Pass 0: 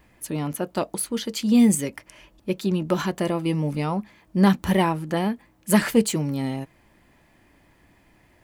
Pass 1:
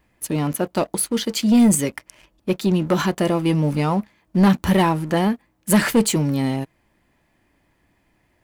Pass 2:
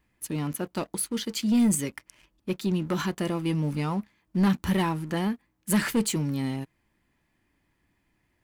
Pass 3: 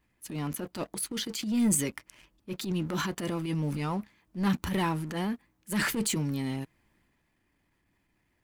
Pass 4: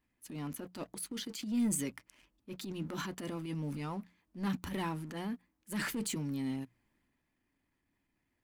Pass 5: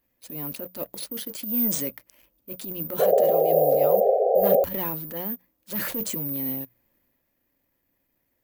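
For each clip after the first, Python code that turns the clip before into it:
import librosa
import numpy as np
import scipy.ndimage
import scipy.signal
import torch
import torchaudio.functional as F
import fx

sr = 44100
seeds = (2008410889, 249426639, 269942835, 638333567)

y1 = fx.leveller(x, sr, passes=2)
y1 = F.gain(torch.from_numpy(y1), -2.0).numpy()
y2 = fx.peak_eq(y1, sr, hz=620.0, db=-6.5, octaves=0.92)
y2 = F.gain(torch.from_numpy(y2), -7.0).numpy()
y3 = fx.hpss(y2, sr, part='harmonic', gain_db=-3)
y3 = fx.transient(y3, sr, attack_db=-11, sustain_db=4)
y4 = fx.peak_eq(y3, sr, hz=260.0, db=6.5, octaves=0.25)
y4 = fx.hum_notches(y4, sr, base_hz=60, count=3)
y4 = F.gain(torch.from_numpy(y4), -8.0).numpy()
y5 = (np.kron(y4[::3], np.eye(3)[0]) * 3)[:len(y4)]
y5 = fx.spec_paint(y5, sr, seeds[0], shape='noise', start_s=2.99, length_s=1.65, low_hz=380.0, high_hz=800.0, level_db=-29.0)
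y5 = fx.peak_eq(y5, sr, hz=540.0, db=12.5, octaves=0.48)
y5 = F.gain(torch.from_numpy(y5), 2.0).numpy()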